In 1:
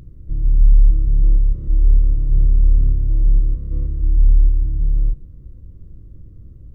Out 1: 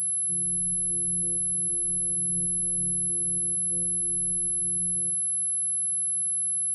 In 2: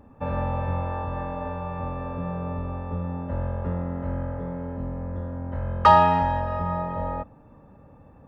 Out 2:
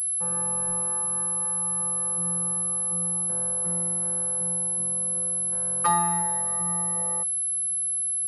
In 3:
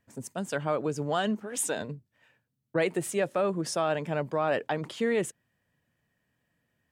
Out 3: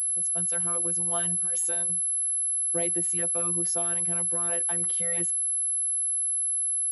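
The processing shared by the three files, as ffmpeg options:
-af "aeval=exprs='val(0)+0.112*sin(2*PI*11000*n/s)':channel_layout=same,highpass=frequency=100:width=0.5412,highpass=frequency=100:width=1.3066,afftfilt=real='hypot(re,im)*cos(PI*b)':imag='0':win_size=1024:overlap=0.75,volume=-3.5dB"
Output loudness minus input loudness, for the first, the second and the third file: −5.0, +3.0, +6.0 LU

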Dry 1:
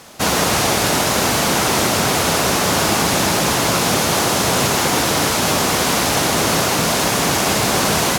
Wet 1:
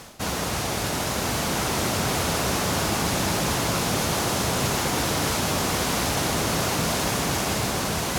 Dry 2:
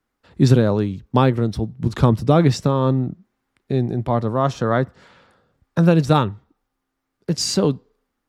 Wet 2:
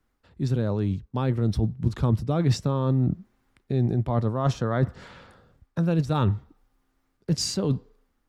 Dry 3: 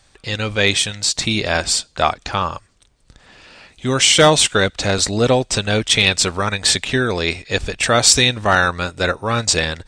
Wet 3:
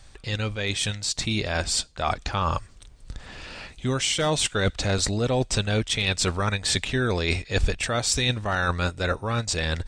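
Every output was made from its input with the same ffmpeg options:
-af "areverse,acompressor=threshold=-26dB:ratio=6,areverse,lowshelf=frequency=100:gain=11.5,dynaudnorm=framelen=540:gausssize=5:maxgain=3dB"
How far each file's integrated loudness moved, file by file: −8.0, −6.5, −9.0 LU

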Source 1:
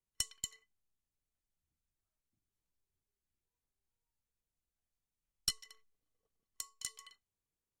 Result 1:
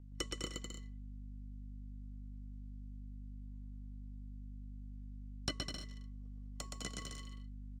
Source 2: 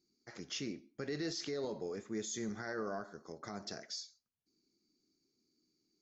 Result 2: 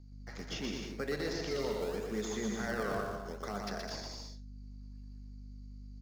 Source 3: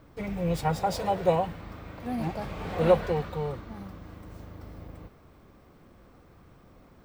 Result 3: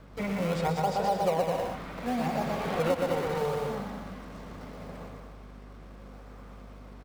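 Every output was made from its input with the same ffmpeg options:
-filter_complex "[0:a]highpass=200,lowpass=6800,equalizer=frequency=320:width_type=o:width=0.33:gain=-10.5,asplit=2[link_01][link_02];[link_02]acrusher=samples=31:mix=1:aa=0.000001:lfo=1:lforange=49.6:lforate=0.75,volume=-7.5dB[link_03];[link_01][link_03]amix=inputs=2:normalize=0,aeval=exprs='val(0)+0.00178*(sin(2*PI*50*n/s)+sin(2*PI*2*50*n/s)/2+sin(2*PI*3*50*n/s)/3+sin(2*PI*4*50*n/s)/4+sin(2*PI*5*50*n/s)/5)':channel_layout=same,asplit=2[link_04][link_05];[link_05]aecho=0:1:120|204|262.8|304|332.8:0.631|0.398|0.251|0.158|0.1[link_06];[link_04][link_06]amix=inputs=2:normalize=0,acrossover=split=650|2900[link_07][link_08][link_09];[link_07]acompressor=threshold=-32dB:ratio=4[link_10];[link_08]acompressor=threshold=-36dB:ratio=4[link_11];[link_09]acompressor=threshold=-49dB:ratio=4[link_12];[link_10][link_11][link_12]amix=inputs=3:normalize=0,volume=3.5dB"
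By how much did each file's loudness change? −6.5, +3.5, −1.5 LU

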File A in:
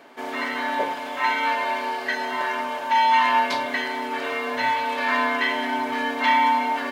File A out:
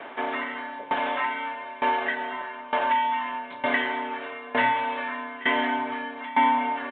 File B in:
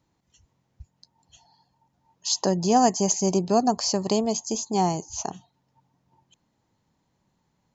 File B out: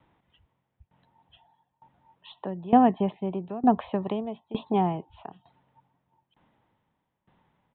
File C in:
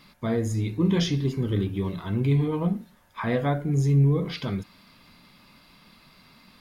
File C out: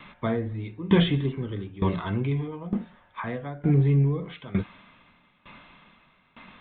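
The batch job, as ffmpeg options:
-filter_complex "[0:a]acrossover=split=330[link_01][link_02];[link_02]acompressor=threshold=-31dB:ratio=3[link_03];[link_01][link_03]amix=inputs=2:normalize=0,aresample=8000,aresample=44100,acrossover=split=500|3000[link_04][link_05][link_06];[link_05]acontrast=38[link_07];[link_04][link_07][link_06]amix=inputs=3:normalize=0,aeval=exprs='val(0)*pow(10,-20*if(lt(mod(1.1*n/s,1),2*abs(1.1)/1000),1-mod(1.1*n/s,1)/(2*abs(1.1)/1000),(mod(1.1*n/s,1)-2*abs(1.1)/1000)/(1-2*abs(1.1)/1000))/20)':channel_layout=same,volume=6dB"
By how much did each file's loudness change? −4.0, −2.5, −1.0 LU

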